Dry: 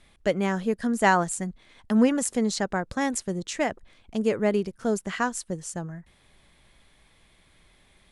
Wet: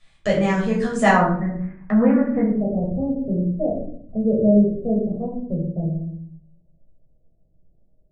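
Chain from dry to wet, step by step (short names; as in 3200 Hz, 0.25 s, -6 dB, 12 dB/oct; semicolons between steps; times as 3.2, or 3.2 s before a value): steep low-pass 8900 Hz 48 dB/oct, from 1.08 s 2000 Hz, from 2.41 s 630 Hz; gate -53 dBFS, range -12 dB; low shelf 210 Hz +3.5 dB; shoebox room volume 660 m³, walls furnished, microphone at 6.1 m; mismatched tape noise reduction encoder only; gain -3.5 dB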